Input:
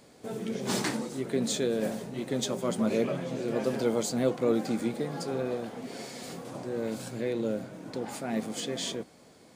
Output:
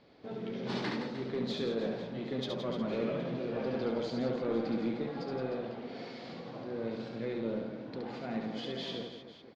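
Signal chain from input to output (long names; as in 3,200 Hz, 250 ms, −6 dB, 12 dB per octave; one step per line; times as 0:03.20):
Butterworth low-pass 4,600 Hz 36 dB per octave
soft clipping −21 dBFS, distortion −17 dB
reverse bouncing-ball delay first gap 70 ms, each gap 1.4×, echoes 5
level −5.5 dB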